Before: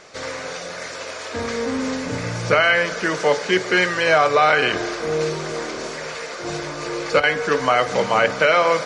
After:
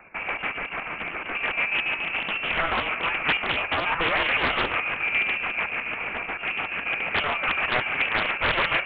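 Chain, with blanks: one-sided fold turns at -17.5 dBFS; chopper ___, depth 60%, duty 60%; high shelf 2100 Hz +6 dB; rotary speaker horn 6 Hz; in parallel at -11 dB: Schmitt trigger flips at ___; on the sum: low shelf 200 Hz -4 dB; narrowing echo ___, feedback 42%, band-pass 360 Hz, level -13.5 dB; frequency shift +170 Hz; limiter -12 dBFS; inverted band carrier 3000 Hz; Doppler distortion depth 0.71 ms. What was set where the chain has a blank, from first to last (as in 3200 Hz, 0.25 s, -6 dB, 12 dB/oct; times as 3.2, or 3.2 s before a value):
7 Hz, -34 dBFS, 97 ms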